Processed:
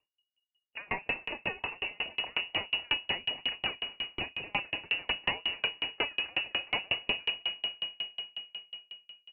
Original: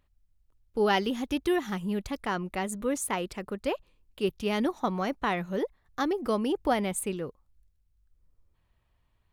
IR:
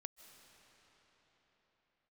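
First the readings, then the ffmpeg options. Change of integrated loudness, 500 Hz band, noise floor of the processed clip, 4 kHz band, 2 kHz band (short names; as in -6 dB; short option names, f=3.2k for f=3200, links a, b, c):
-2.5 dB, -14.5 dB, under -85 dBFS, +10.5 dB, +4.0 dB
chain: -filter_complex "[0:a]agate=range=-23dB:threshold=-57dB:ratio=16:detection=peak,equalizer=f=1.3k:w=7.3:g=-5.5,bandreject=f=56.18:t=h:w=4,bandreject=f=112.36:t=h:w=4,bandreject=f=168.54:t=h:w=4,bandreject=f=224.72:t=h:w=4,bandreject=f=280.9:t=h:w=4,bandreject=f=337.08:t=h:w=4,bandreject=f=393.26:t=h:w=4,asplit=2[a][b];[b]acompressor=threshold=-38dB:ratio=6,volume=-0.5dB[c];[a][c]amix=inputs=2:normalize=0,alimiter=limit=-22dB:level=0:latency=1:release=378,aresample=8000,aeval=exprs='0.0841*sin(PI/2*2.51*val(0)/0.0841)':c=same,aresample=44100,aexciter=amount=7.7:drive=3.8:freq=2.2k,asplit=2[d][e];[e]adelay=38,volume=-10dB[f];[d][f]amix=inputs=2:normalize=0,aecho=1:1:257|514|771|1028|1285|1542:0.237|0.135|0.077|0.0439|0.025|0.0143[g];[1:a]atrim=start_sample=2205[h];[g][h]afir=irnorm=-1:irlink=0,lowpass=f=2.5k:t=q:w=0.5098,lowpass=f=2.5k:t=q:w=0.6013,lowpass=f=2.5k:t=q:w=0.9,lowpass=f=2.5k:t=q:w=2.563,afreqshift=-2900,aeval=exprs='val(0)*pow(10,-37*if(lt(mod(5.5*n/s,1),2*abs(5.5)/1000),1-mod(5.5*n/s,1)/(2*abs(5.5)/1000),(mod(5.5*n/s,1)-2*abs(5.5)/1000)/(1-2*abs(5.5)/1000))/20)':c=same,volume=2.5dB"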